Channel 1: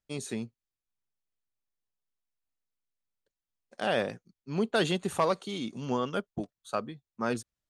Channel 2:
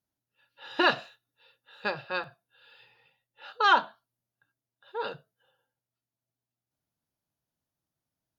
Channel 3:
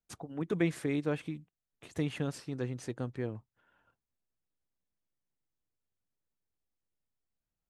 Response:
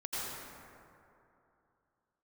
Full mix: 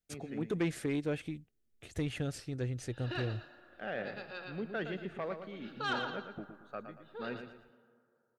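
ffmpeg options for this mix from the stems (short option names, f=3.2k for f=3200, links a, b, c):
-filter_complex "[0:a]lowpass=f=1.9k:t=q:w=1.7,volume=-10.5dB,asplit=3[a][b][c];[b]volume=-23.5dB[d];[c]volume=-8.5dB[e];[1:a]adelay=2200,volume=-10dB,asplit=3[f][g][h];[g]volume=-18dB[i];[h]volume=-5dB[j];[2:a]asubboost=boost=10:cutoff=71,volume=1dB,asplit=2[k][l];[l]apad=whole_len=466895[m];[f][m]sidechaincompress=threshold=-58dB:ratio=8:attack=5.3:release=652[n];[3:a]atrim=start_sample=2205[o];[d][i]amix=inputs=2:normalize=0[p];[p][o]afir=irnorm=-1:irlink=0[q];[e][j]amix=inputs=2:normalize=0,aecho=0:1:115|230|345|460|575:1|0.36|0.13|0.0467|0.0168[r];[a][n][k][q][r]amix=inputs=5:normalize=0,equalizer=f=1k:w=3.3:g=-12,asoftclip=type=tanh:threshold=-24.5dB"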